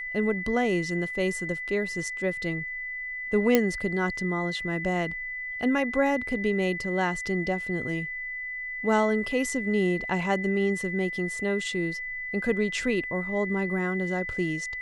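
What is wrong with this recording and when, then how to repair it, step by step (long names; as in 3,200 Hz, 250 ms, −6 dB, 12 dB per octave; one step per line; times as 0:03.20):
whistle 2,000 Hz −32 dBFS
0:03.55: click −6 dBFS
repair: click removal
notch filter 2,000 Hz, Q 30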